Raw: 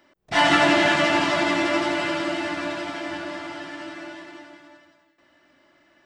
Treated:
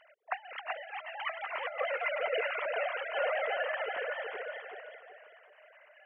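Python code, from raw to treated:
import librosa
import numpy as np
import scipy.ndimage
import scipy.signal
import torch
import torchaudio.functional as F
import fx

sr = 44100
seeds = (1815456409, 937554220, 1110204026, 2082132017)

y = fx.sine_speech(x, sr)
y = fx.over_compress(y, sr, threshold_db=-27.0, ratio=-0.5)
y = fx.echo_feedback(y, sr, ms=381, feedback_pct=27, wet_db=-4)
y = fx.comb_cascade(y, sr, direction='falling', hz=1.9, at=(0.89, 3.15), fade=0.02)
y = y * librosa.db_to_amplitude(-5.0)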